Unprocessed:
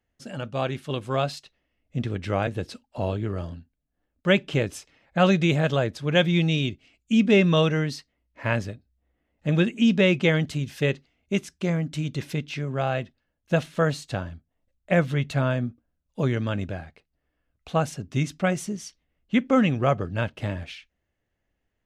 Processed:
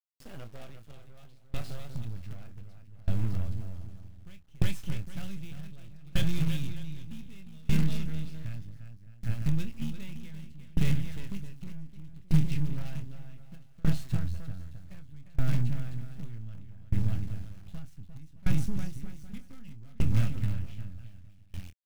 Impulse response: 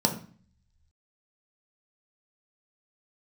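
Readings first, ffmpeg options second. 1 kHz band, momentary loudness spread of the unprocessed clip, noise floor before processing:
-21.5 dB, 15 LU, -79 dBFS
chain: -filter_complex "[0:a]asuperstop=centerf=1000:order=20:qfactor=3,equalizer=f=6.6k:w=0.64:g=-5.5,acrossover=split=2600[a][b];[a]acompressor=threshold=-27dB:ratio=16[c];[c][b]amix=inputs=2:normalize=0,aecho=1:1:350|612.5|809.4|957|1068:0.631|0.398|0.251|0.158|0.1,acrusher=bits=5:dc=4:mix=0:aa=0.000001,asoftclip=type=tanh:threshold=-27.5dB,asubboost=boost=11.5:cutoff=140,asplit=2[d][e];[e]adelay=26,volume=-9.5dB[f];[d][f]amix=inputs=2:normalize=0,aeval=exprs='val(0)*pow(10,-28*if(lt(mod(0.65*n/s,1),2*abs(0.65)/1000),1-mod(0.65*n/s,1)/(2*abs(0.65)/1000),(mod(0.65*n/s,1)-2*abs(0.65)/1000)/(1-2*abs(0.65)/1000))/20)':c=same"

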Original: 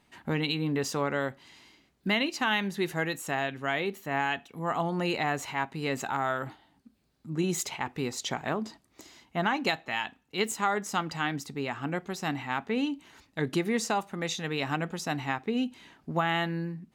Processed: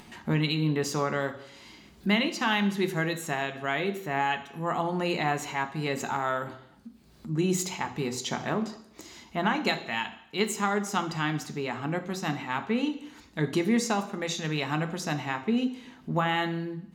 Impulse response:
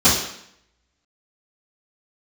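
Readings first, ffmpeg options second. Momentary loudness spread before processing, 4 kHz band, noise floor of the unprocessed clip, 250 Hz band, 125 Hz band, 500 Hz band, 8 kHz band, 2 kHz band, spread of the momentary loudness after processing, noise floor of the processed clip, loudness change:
7 LU, +1.0 dB, -68 dBFS, +3.0 dB, +3.5 dB, +1.5 dB, +1.5 dB, +0.5 dB, 9 LU, -55 dBFS, +1.5 dB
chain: -filter_complex "[0:a]acompressor=mode=upward:threshold=-40dB:ratio=2.5,asplit=2[a][b];[1:a]atrim=start_sample=2205[c];[b][c]afir=irnorm=-1:irlink=0,volume=-28.5dB[d];[a][d]amix=inputs=2:normalize=0"

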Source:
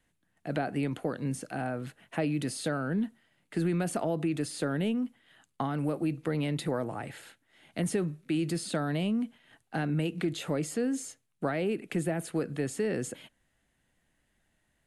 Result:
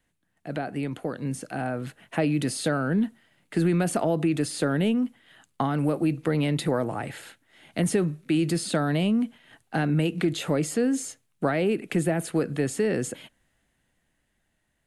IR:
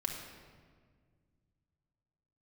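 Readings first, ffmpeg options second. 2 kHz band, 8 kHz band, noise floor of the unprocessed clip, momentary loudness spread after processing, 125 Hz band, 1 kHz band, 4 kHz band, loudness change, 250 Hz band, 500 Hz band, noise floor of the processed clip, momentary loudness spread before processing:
+5.5 dB, +6.0 dB, -75 dBFS, 9 LU, +5.5 dB, +5.5 dB, +6.0 dB, +5.5 dB, +5.5 dB, +5.5 dB, -74 dBFS, 8 LU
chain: -af "dynaudnorm=f=240:g=13:m=6dB"

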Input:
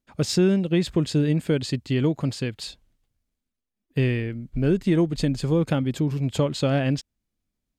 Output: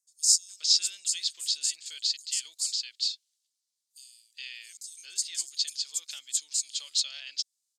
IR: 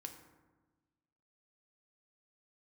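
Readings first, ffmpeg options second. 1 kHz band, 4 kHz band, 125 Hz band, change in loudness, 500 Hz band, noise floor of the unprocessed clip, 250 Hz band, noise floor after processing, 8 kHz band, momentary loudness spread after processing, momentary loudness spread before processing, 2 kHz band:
under -25 dB, +7.5 dB, under -40 dB, -4.0 dB, under -40 dB, -84 dBFS, under -40 dB, -83 dBFS, +13.0 dB, 18 LU, 9 LU, -11.0 dB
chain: -filter_complex "[0:a]asuperpass=centerf=5900:order=4:qfactor=1.4,aemphasis=mode=production:type=riaa,acrossover=split=5600[a][b];[a]adelay=410[c];[c][b]amix=inputs=2:normalize=0,volume=4.5dB"

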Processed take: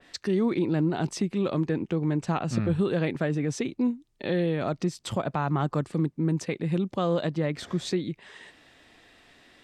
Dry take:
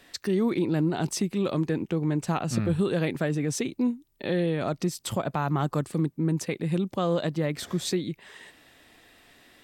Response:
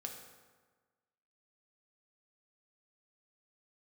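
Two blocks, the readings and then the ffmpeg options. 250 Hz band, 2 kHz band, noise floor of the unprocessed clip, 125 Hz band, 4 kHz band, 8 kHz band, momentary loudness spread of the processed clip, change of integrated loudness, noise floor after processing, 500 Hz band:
0.0 dB, -0.5 dB, -64 dBFS, 0.0 dB, -2.0 dB, -6.0 dB, 5 LU, 0.0 dB, -64 dBFS, 0.0 dB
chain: -af "lowpass=7.2k,adynamicequalizer=threshold=0.00501:dfrequency=3100:dqfactor=0.7:tfrequency=3100:tqfactor=0.7:attack=5:release=100:ratio=0.375:range=2:mode=cutabove:tftype=highshelf"

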